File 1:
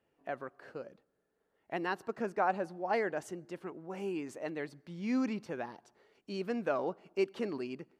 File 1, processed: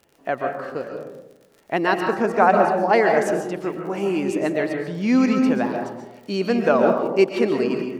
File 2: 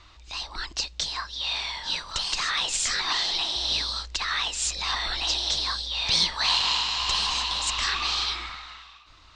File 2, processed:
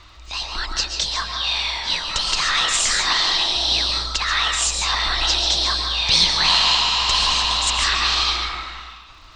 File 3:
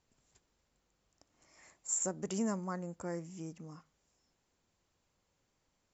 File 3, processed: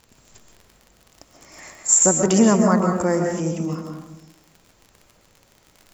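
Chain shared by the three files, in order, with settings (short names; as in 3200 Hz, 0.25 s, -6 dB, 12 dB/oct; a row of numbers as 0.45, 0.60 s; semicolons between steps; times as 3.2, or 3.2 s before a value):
crackle 44/s -53 dBFS; digital reverb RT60 1 s, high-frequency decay 0.3×, pre-delay 95 ms, DRR 3 dB; normalise peaks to -3 dBFS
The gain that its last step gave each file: +14.0, +6.0, +19.0 dB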